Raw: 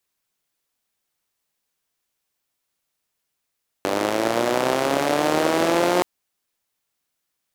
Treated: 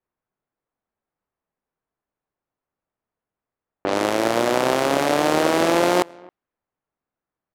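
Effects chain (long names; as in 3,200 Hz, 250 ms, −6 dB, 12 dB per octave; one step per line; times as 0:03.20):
slap from a distant wall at 46 metres, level −25 dB
low-pass that shuts in the quiet parts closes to 1,400 Hz, open at −17.5 dBFS
one half of a high-frequency compander decoder only
level +1.5 dB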